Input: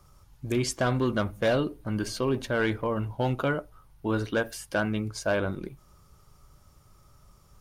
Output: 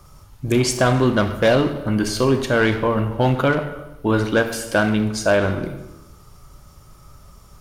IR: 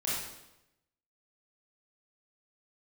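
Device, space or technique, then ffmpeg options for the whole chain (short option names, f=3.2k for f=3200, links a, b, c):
saturated reverb return: -filter_complex "[0:a]asplit=2[a][b];[1:a]atrim=start_sample=2205[c];[b][c]afir=irnorm=-1:irlink=0,asoftclip=type=tanh:threshold=-22dB,volume=-8.5dB[d];[a][d]amix=inputs=2:normalize=0,volume=7.5dB"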